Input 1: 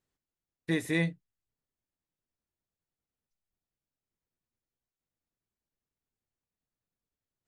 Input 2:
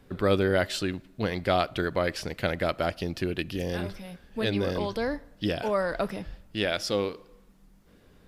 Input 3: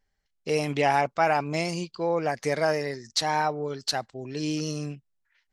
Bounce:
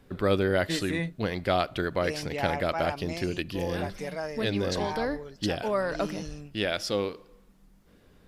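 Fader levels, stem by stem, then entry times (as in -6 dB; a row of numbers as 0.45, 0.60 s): -2.5, -1.0, -10.0 dB; 0.00, 0.00, 1.55 s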